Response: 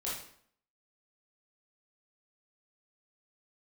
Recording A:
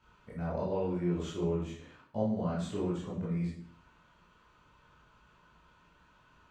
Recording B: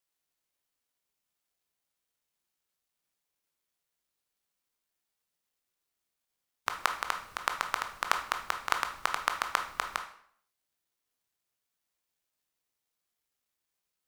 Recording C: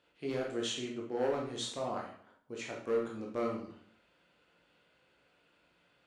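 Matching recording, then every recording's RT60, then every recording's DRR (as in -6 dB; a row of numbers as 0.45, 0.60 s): A; 0.60, 0.60, 0.60 s; -7.5, 5.0, -2.0 dB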